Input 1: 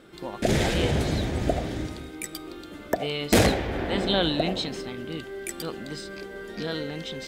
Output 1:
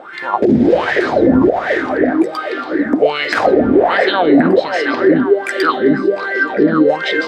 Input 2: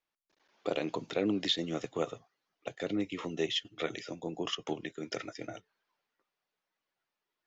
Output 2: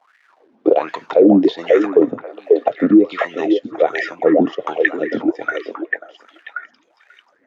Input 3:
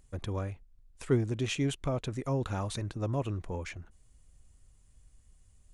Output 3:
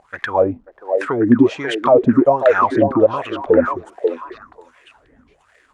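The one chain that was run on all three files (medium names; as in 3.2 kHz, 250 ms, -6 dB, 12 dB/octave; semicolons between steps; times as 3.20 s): dynamic bell 4.8 kHz, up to +6 dB, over -48 dBFS, Q 2.4; compression 6:1, threshold -27 dBFS; crackle 470 per s -60 dBFS; wah-wah 1.3 Hz 240–1900 Hz, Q 8.1; on a send: repeats whose band climbs or falls 539 ms, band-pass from 530 Hz, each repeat 1.4 oct, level -3 dB; on the sum: loudness maximiser +34.5 dB; trim -1 dB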